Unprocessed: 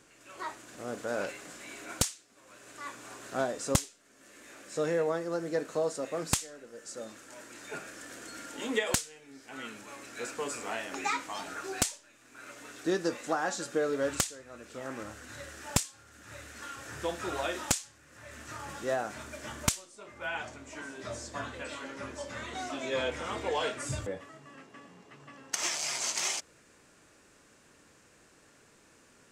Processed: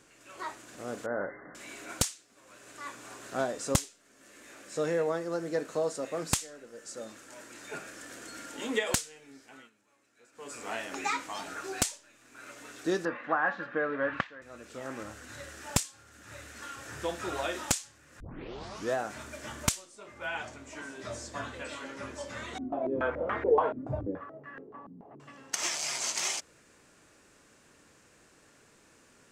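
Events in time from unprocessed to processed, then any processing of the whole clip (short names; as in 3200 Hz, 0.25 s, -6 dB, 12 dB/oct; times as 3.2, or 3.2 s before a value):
1.06–1.55 brick-wall FIR low-pass 2100 Hz
9.28–10.74 dip -23.5 dB, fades 0.42 s
13.05–14.42 speaker cabinet 130–2700 Hz, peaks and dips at 390 Hz -9 dB, 1100 Hz +7 dB, 1700 Hz +8 dB
18.2 tape start 0.74 s
22.58–25.2 stepped low-pass 7 Hz 250–1700 Hz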